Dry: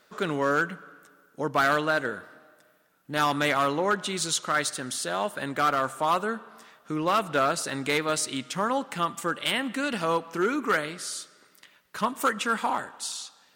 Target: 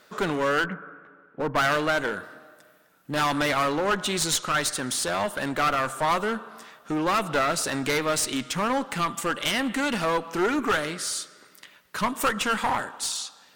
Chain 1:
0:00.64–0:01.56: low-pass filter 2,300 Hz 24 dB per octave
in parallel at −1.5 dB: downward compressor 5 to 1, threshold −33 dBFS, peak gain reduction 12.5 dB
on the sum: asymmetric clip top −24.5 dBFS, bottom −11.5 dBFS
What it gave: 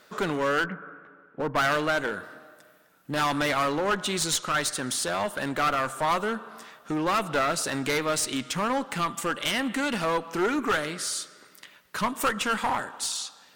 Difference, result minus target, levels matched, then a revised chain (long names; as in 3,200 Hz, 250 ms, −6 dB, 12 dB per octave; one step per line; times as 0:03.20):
downward compressor: peak gain reduction +7 dB
0:00.64–0:01.56: low-pass filter 2,300 Hz 24 dB per octave
in parallel at −1.5 dB: downward compressor 5 to 1, threshold −24.5 dBFS, peak gain reduction 5.5 dB
on the sum: asymmetric clip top −24.5 dBFS, bottom −11.5 dBFS